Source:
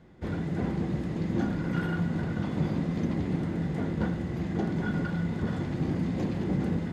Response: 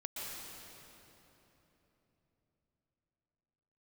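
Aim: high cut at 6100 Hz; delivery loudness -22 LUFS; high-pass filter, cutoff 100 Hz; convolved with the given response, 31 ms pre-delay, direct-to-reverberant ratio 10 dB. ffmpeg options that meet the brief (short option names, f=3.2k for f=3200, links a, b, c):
-filter_complex "[0:a]highpass=100,lowpass=6.1k,asplit=2[a][b];[1:a]atrim=start_sample=2205,adelay=31[c];[b][c]afir=irnorm=-1:irlink=0,volume=-11dB[d];[a][d]amix=inputs=2:normalize=0,volume=8.5dB"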